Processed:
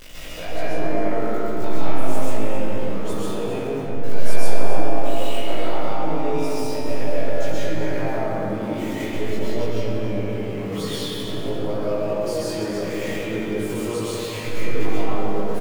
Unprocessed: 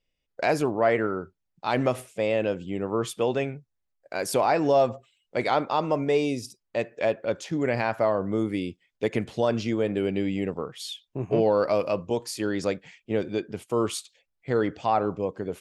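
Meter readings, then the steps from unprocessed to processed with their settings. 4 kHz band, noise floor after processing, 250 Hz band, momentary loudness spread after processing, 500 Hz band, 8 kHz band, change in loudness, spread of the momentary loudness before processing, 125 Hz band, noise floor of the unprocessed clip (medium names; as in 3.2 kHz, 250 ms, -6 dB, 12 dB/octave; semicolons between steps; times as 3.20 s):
+4.5 dB, -28 dBFS, +2.0 dB, 4 LU, 0.0 dB, +3.0 dB, +0.5 dB, 11 LU, +4.5 dB, -79 dBFS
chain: jump at every zero crossing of -32.5 dBFS; compression 6:1, threshold -34 dBFS, peak gain reduction 16.5 dB; doubling 19 ms -2 dB; multi-head delay 90 ms, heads all three, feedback 47%, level -13.5 dB; algorithmic reverb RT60 4.6 s, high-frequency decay 0.25×, pre-delay 90 ms, DRR -10 dB; trim -3.5 dB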